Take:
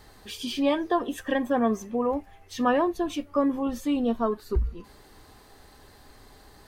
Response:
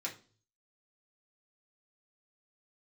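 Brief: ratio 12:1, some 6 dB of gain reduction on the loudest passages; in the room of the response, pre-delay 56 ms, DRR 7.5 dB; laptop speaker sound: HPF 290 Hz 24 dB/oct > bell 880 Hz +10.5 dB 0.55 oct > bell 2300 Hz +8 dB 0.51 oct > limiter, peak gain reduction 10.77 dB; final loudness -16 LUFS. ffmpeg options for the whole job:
-filter_complex "[0:a]acompressor=threshold=-24dB:ratio=12,asplit=2[a][b];[1:a]atrim=start_sample=2205,adelay=56[c];[b][c]afir=irnorm=-1:irlink=0,volume=-8.5dB[d];[a][d]amix=inputs=2:normalize=0,highpass=f=290:w=0.5412,highpass=f=290:w=1.3066,equalizer=f=880:t=o:w=0.55:g=10.5,equalizer=f=2.3k:t=o:w=0.51:g=8,volume=17dB,alimiter=limit=-6.5dB:level=0:latency=1"

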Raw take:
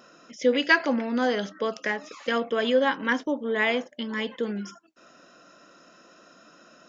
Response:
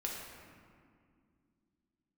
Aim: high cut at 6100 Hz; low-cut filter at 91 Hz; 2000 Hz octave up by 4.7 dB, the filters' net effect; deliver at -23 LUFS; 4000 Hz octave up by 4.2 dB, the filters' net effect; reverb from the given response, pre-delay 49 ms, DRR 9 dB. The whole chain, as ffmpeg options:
-filter_complex "[0:a]highpass=91,lowpass=6.1k,equalizer=f=2k:t=o:g=5,equalizer=f=4k:t=o:g=4,asplit=2[a][b];[1:a]atrim=start_sample=2205,adelay=49[c];[b][c]afir=irnorm=-1:irlink=0,volume=-10.5dB[d];[a][d]amix=inputs=2:normalize=0"

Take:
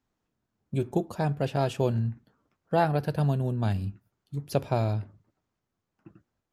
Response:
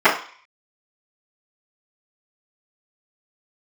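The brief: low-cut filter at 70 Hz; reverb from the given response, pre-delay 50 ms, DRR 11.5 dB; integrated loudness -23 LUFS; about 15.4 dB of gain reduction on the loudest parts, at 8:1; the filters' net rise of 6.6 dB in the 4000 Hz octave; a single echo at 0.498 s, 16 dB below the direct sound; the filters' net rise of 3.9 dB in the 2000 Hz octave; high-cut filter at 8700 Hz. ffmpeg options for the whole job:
-filter_complex "[0:a]highpass=70,lowpass=8.7k,equalizer=f=2k:t=o:g=4,equalizer=f=4k:t=o:g=7,acompressor=threshold=-35dB:ratio=8,aecho=1:1:498:0.158,asplit=2[a][b];[1:a]atrim=start_sample=2205,adelay=50[c];[b][c]afir=irnorm=-1:irlink=0,volume=-37.5dB[d];[a][d]amix=inputs=2:normalize=0,volume=17.5dB"

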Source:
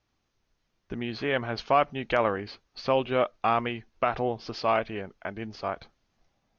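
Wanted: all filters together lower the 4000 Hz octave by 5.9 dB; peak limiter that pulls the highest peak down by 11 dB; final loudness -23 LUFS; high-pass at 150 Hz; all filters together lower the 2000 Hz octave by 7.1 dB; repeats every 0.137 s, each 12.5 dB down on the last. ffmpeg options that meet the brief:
-af "highpass=150,equalizer=f=2k:t=o:g=-8.5,equalizer=f=4k:t=o:g=-4.5,alimiter=limit=-22dB:level=0:latency=1,aecho=1:1:137|274|411:0.237|0.0569|0.0137,volume=12.5dB"

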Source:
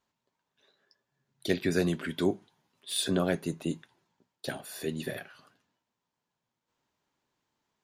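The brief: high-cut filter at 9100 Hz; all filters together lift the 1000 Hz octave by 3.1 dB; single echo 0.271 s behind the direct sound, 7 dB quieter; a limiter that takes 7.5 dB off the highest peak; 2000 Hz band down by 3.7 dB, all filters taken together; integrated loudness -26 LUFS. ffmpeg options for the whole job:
-af "lowpass=9.1k,equalizer=f=1k:t=o:g=6.5,equalizer=f=2k:t=o:g=-7.5,alimiter=limit=-20dB:level=0:latency=1,aecho=1:1:271:0.447,volume=8dB"

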